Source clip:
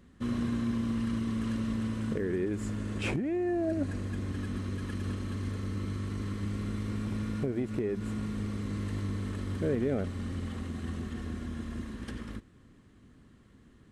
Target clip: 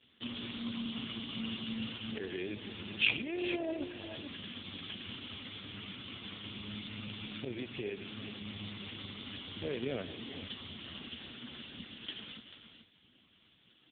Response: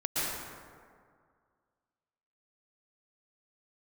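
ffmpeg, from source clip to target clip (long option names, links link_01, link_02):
-filter_complex "[0:a]tiltshelf=frequency=760:gain=-7,tremolo=f=34:d=0.182,acrossover=split=180|1100[link_01][link_02][link_03];[link_03]aexciter=amount=8.6:drive=1.5:freq=2600[link_04];[link_01][link_02][link_04]amix=inputs=3:normalize=0,aecho=1:1:48|116|365|410|441:0.119|0.211|0.15|0.133|0.299,volume=-2dB" -ar 8000 -c:a libopencore_amrnb -b:a 4750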